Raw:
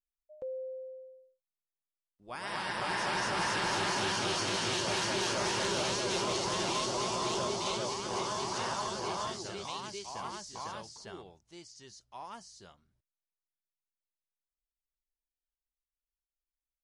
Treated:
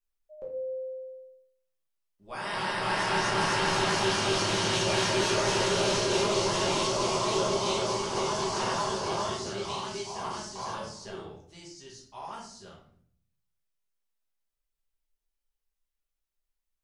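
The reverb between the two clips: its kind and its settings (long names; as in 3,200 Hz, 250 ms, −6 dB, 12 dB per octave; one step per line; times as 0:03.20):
rectangular room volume 85 cubic metres, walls mixed, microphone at 1.3 metres
level −1 dB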